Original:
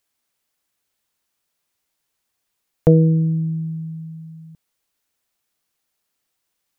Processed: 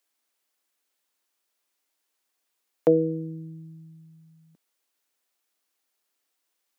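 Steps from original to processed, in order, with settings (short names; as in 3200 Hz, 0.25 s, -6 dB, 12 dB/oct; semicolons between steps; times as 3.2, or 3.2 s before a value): HPF 250 Hz 24 dB/oct; gain -2.5 dB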